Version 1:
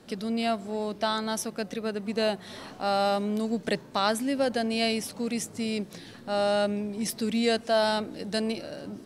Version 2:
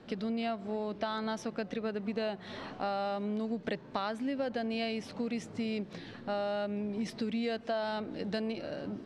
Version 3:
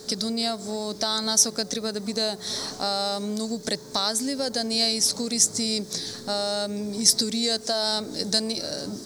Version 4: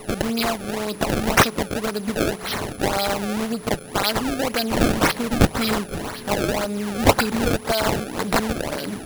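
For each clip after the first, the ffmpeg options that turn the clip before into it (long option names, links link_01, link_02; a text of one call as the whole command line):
ffmpeg -i in.wav -af "lowpass=3400,acompressor=threshold=-31dB:ratio=6" out.wav
ffmpeg -i in.wav -af "aexciter=amount=11.6:drive=9.8:freq=4500,aeval=exprs='val(0)+0.00355*sin(2*PI*430*n/s)':channel_layout=same,volume=5dB" out.wav
ffmpeg -i in.wav -af "acrusher=samples=26:mix=1:aa=0.000001:lfo=1:lforange=41.6:lforate=1.9,aeval=exprs='val(0)+0.00316*sin(2*PI*10000*n/s)':channel_layout=same,volume=4dB" out.wav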